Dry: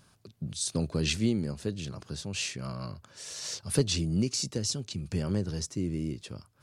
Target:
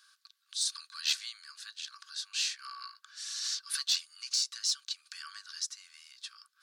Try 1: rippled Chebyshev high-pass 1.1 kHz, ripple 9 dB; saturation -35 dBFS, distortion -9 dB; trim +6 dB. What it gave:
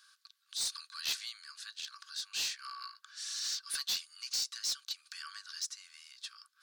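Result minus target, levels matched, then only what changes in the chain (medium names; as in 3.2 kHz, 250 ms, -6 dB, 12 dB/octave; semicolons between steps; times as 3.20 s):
saturation: distortion +13 dB
change: saturation -23.5 dBFS, distortion -22 dB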